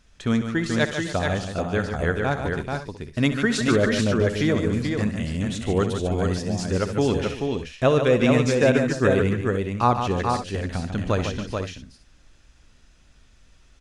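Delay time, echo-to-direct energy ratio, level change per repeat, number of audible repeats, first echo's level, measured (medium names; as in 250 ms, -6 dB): 66 ms, -2.0 dB, no regular repeats, 5, -13.0 dB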